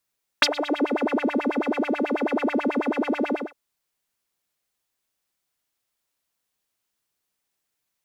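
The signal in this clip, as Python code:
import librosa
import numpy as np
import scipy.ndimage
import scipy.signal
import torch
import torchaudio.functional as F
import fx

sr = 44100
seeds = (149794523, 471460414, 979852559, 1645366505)

y = fx.sub_patch_wobble(sr, seeds[0], note=74, wave='triangle', wave2='saw', interval_st=12, level2_db=-12.0, sub_db=-1.0, noise_db=-11, kind='bandpass', cutoff_hz=770.0, q=8.7, env_oct=1.0, env_decay_s=0.5, env_sustain_pct=5, attack_ms=4.7, decay_s=0.05, sustain_db=-21.0, release_s=0.21, note_s=2.9, lfo_hz=9.2, wobble_oct=1.8)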